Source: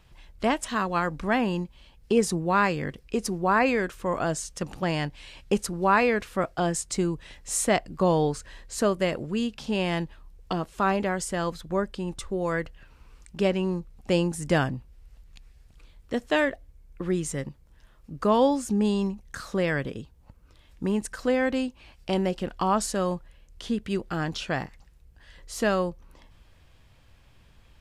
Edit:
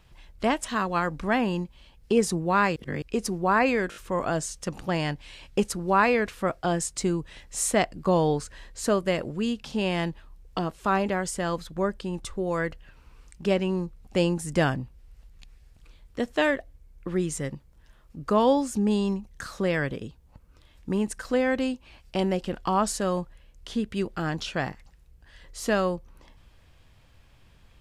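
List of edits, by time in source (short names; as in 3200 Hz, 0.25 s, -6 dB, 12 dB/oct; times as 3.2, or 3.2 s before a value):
2.76–3.02 reverse
3.9 stutter 0.02 s, 4 plays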